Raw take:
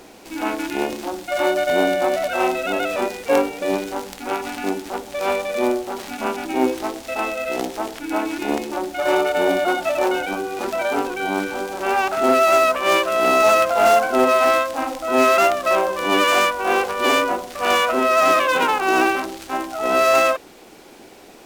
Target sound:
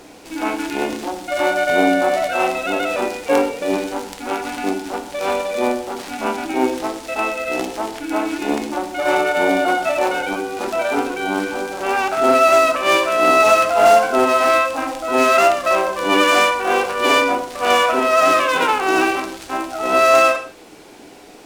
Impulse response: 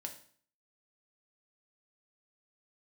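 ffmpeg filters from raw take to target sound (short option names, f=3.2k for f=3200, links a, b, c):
-filter_complex "[0:a]asplit=2[a][b];[1:a]atrim=start_sample=2205,atrim=end_sample=3969,asetrate=22050,aresample=44100[c];[b][c]afir=irnorm=-1:irlink=0,volume=0.5dB[d];[a][d]amix=inputs=2:normalize=0,volume=-4.5dB"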